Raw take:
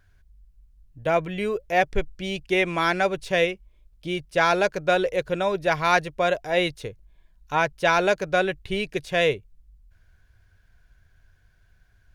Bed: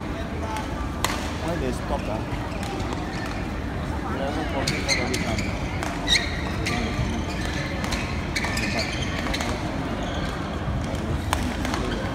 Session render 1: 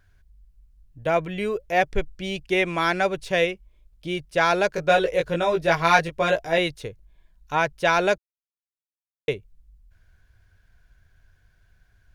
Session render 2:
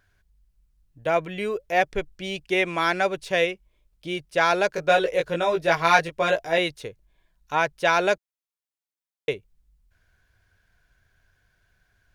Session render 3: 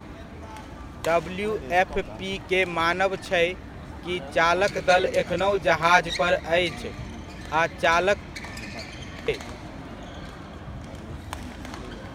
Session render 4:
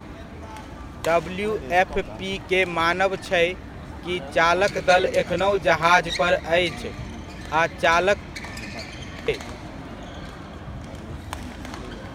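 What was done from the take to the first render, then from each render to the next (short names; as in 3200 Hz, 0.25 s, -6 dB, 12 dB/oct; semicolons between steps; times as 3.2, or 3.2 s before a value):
4.72–6.58 doubler 18 ms -2 dB; 8.18–9.28 mute
low shelf 140 Hz -10.5 dB
add bed -11 dB
gain +2 dB; limiter -3 dBFS, peak gain reduction 2 dB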